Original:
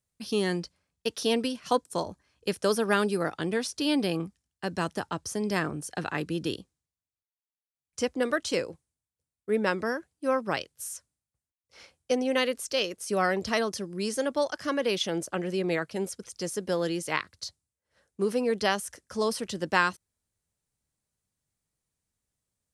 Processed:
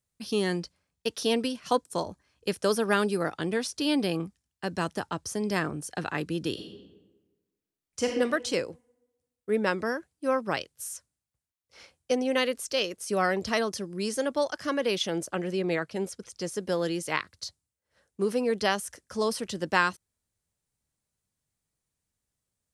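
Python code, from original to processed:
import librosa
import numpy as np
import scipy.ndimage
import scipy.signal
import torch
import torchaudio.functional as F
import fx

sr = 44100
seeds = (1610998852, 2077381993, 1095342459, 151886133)

y = fx.reverb_throw(x, sr, start_s=6.52, length_s=1.54, rt60_s=1.2, drr_db=0.0)
y = fx.high_shelf(y, sr, hz=9700.0, db=-8.0, at=(15.51, 16.56))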